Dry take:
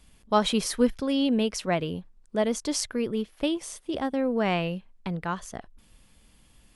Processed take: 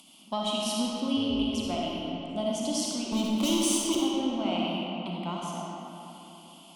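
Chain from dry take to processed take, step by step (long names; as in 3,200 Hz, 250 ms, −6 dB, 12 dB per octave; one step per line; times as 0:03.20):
high-pass filter 140 Hz 24 dB per octave
parametric band 3,000 Hz +13.5 dB 0.28 octaves
upward compression, threshold −42 dBFS
0:03.12–0:03.97: leveller curve on the samples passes 5
downward compressor 4 to 1, threshold −24 dBFS, peak gain reduction 9 dB
phaser with its sweep stopped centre 460 Hz, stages 6
harmonic generator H 2 −19 dB, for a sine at −11.5 dBFS
0:01.17–0:01.70: amplitude modulation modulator 170 Hz, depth 80%
comb and all-pass reverb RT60 3.4 s, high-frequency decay 0.6×, pre-delay 15 ms, DRR −4 dB
level −3 dB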